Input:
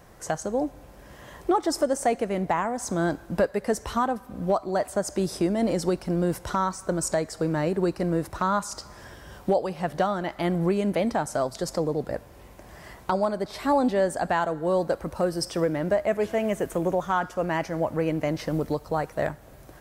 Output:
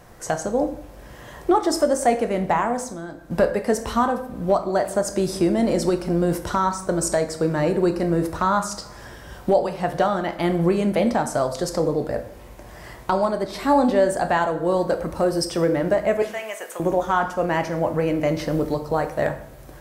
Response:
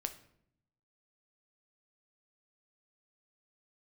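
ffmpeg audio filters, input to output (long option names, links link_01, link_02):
-filter_complex "[0:a]asettb=1/sr,asplit=3[link_01][link_02][link_03];[link_01]atrim=end=2.814[link_04];[link_02]atrim=start=2.81:end=3.31,asetpts=PTS-STARTPTS,afade=type=in:duration=0.004:curve=qsin,afade=type=out:start_time=0.496:duration=0.004:curve=qsin,acompressor=threshold=-38dB:ratio=4[link_05];[link_03]atrim=start=3.306[link_06];[link_04][link_05]acrossfade=duration=0.004:curve1=hsin:curve2=qsin[link_07];[link_07][link_06]acrossfade=duration=0.004:curve1=qsin:curve2=hsin,asettb=1/sr,asplit=3[link_08][link_09][link_10];[link_08]atrim=end=16.224[link_11];[link_09]atrim=start=16.22:end=16.8,asetpts=PTS-STARTPTS,afade=type=in:duration=0.004:curve=qsin,afade=type=out:start_time=0.576:duration=0.004:curve=qsin,highpass=970[link_12];[link_10]atrim=start=16.796[link_13];[link_11][link_12]acrossfade=duration=0.004:curve1=hsin:curve2=qsin[link_14];[link_14][link_13]acrossfade=duration=0.004:curve1=qsin:curve2=hsin[link_15];[1:a]atrim=start_sample=2205,afade=type=out:start_time=0.22:duration=0.01,atrim=end_sample=10143,asetrate=36162,aresample=44100[link_16];[link_15][link_16]afir=irnorm=-1:irlink=0,volume=4dB"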